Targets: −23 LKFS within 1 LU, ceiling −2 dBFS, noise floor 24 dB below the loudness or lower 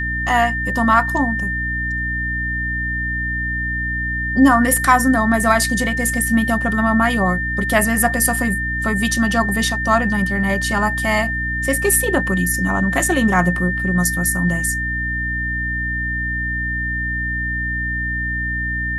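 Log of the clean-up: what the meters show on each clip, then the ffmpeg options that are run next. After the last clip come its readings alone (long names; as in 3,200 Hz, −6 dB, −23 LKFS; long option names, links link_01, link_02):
mains hum 60 Hz; hum harmonics up to 300 Hz; level of the hum −24 dBFS; interfering tone 1,800 Hz; level of the tone −21 dBFS; integrated loudness −18.0 LKFS; sample peak −2.0 dBFS; target loudness −23.0 LKFS
→ -af "bandreject=frequency=60:width_type=h:width=6,bandreject=frequency=120:width_type=h:width=6,bandreject=frequency=180:width_type=h:width=6,bandreject=frequency=240:width_type=h:width=6,bandreject=frequency=300:width_type=h:width=6"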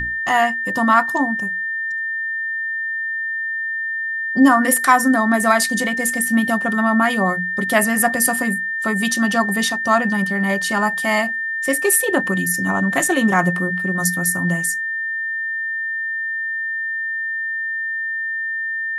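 mains hum none found; interfering tone 1,800 Hz; level of the tone −21 dBFS
→ -af "bandreject=frequency=1800:width=30"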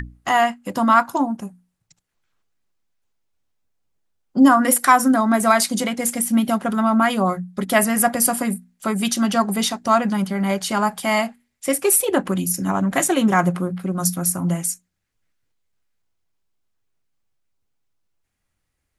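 interfering tone none found; integrated loudness −19.0 LKFS; sample peak −2.0 dBFS; target loudness −23.0 LKFS
→ -af "volume=-4dB"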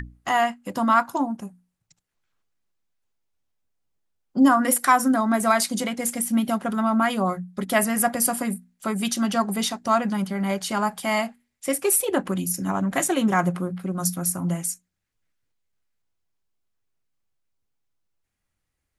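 integrated loudness −23.0 LKFS; sample peak −6.0 dBFS; background noise floor −79 dBFS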